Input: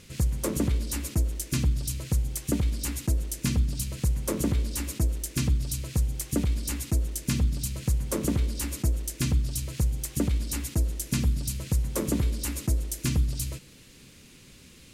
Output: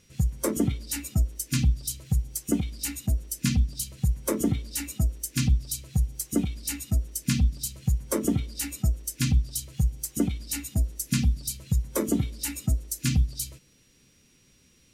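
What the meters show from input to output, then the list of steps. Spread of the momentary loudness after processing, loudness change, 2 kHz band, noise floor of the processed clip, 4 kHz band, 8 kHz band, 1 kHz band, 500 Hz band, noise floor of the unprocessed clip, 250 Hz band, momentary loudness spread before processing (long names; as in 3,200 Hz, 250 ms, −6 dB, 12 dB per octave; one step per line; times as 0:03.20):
5 LU, +0.5 dB, +1.0 dB, −61 dBFS, +1.0 dB, +1.5 dB, 0.0 dB, +1.0 dB, −52 dBFS, +2.0 dB, 3 LU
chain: steady tone 5,700 Hz −56 dBFS
noise reduction from a noise print of the clip's start 13 dB
level +3 dB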